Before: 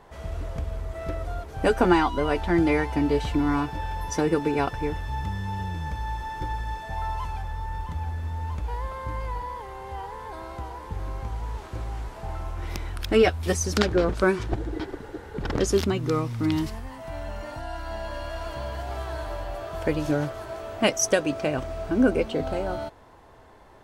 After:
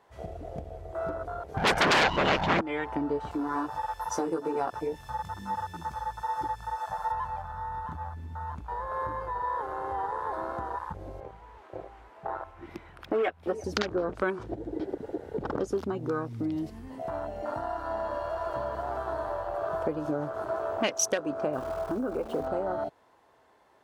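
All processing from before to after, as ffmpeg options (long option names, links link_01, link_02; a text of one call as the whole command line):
ffmpeg -i in.wav -filter_complex "[0:a]asettb=1/sr,asplit=3[link_01][link_02][link_03];[link_01]atrim=end=1.574[link_04];[link_02]atrim=start=1.57:end=2.61,asetpts=PTS-STARTPTS,afade=type=in:duration=0.004:curve=qsin,afade=type=out:start_time=1.036:duration=0.004:curve=qsin,lowshelf=frequency=170:gain=8,aecho=1:1:1.4:0.64,atrim=end_sample=45864,aeval=exprs='0.668*sin(PI/2*6.31*val(0)/0.668)':channel_layout=same[link_05];[link_03]atrim=start=2.606[link_06];[link_04][link_05]acrossfade=duration=0.004:curve1=hsin:curve2=qsin[link_07];[link_07][link_06]acrossfade=duration=0.004:curve1=qsin:curve2=hsin,asettb=1/sr,asplit=3[link_08][link_09][link_10];[link_08]atrim=end=3.314[link_11];[link_09]atrim=start=3.31:end=7.12,asetpts=PTS-STARTPTS,afade=type=in:duration=0.004:curve=qsin,afade=type=out:start_time=3.806:duration=0.004:curve=qsin,bass=frequency=250:gain=-6,treble=frequency=4000:gain=11,acompressor=mode=upward:threshold=-30dB:ratio=2.5:attack=3.2:release=140:knee=2.83:detection=peak,flanger=delay=15.5:depth=3.3:speed=2.3[link_12];[link_10]atrim=start=7.116[link_13];[link_11][link_12]acrossfade=duration=0.004:curve1=hsin:curve2=qsin[link_14];[link_14][link_13]acrossfade=duration=0.004:curve1=qsin:curve2=hsin,asettb=1/sr,asplit=3[link_15][link_16][link_17];[link_15]atrim=end=11.204[link_18];[link_16]atrim=start=11.2:end=13.64,asetpts=PTS-STARTPTS,afade=type=in:duration=0.004:curve=qsin,afade=type=out:start_time=2.436:duration=0.004:curve=qsin,acrossover=split=230 2900:gain=0.2 1 0.224[link_19][link_20][link_21];[link_19][link_20][link_21]amix=inputs=3:normalize=0,aecho=1:1:353:0.106,atrim=end_sample=107604,volume=16dB,asoftclip=hard,volume=-16dB[link_22];[link_17]atrim=start=13.636[link_23];[link_18][link_22]acrossfade=duration=0.004:curve1=hsin:curve2=qsin[link_24];[link_24][link_23]acrossfade=duration=0.004:curve1=qsin:curve2=hsin,asettb=1/sr,asplit=3[link_25][link_26][link_27];[link_25]atrim=end=21.534[link_28];[link_26]atrim=start=21.53:end=22.47,asetpts=PTS-STARTPTS,afade=type=in:duration=0.004:curve=qsin,afade=type=out:start_time=0.936:duration=0.004:curve=qsin,asubboost=boost=8.5:cutoff=78,acrusher=bits=7:dc=4:mix=0:aa=0.000001,acompressor=threshold=-23dB:ratio=3:attack=3.2:release=140:knee=1:detection=peak[link_29];[link_27]atrim=start=22.466[link_30];[link_28][link_29]acrossfade=duration=0.004:curve1=hsin:curve2=qsin[link_31];[link_31][link_30]acrossfade=duration=0.004:curve1=qsin:curve2=hsin,afwtdn=0.0251,acompressor=threshold=-33dB:ratio=4,highpass=frequency=370:poles=1,volume=8dB" out.wav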